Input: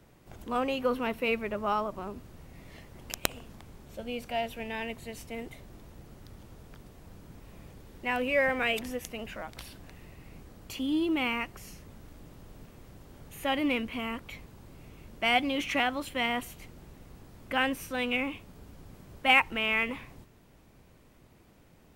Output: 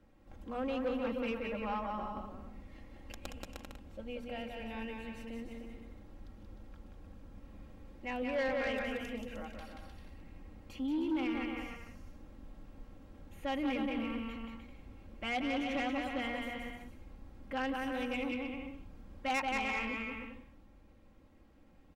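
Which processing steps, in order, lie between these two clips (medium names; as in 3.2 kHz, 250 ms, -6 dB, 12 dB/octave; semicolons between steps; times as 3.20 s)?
low-pass 2.4 kHz 6 dB/octave; bass shelf 170 Hz +5.5 dB; hum notches 60/120/180/240 Hz; comb 3.7 ms, depth 67%; bouncing-ball echo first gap 180 ms, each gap 0.7×, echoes 5; saturation -19.5 dBFS, distortion -14 dB; trim -8.5 dB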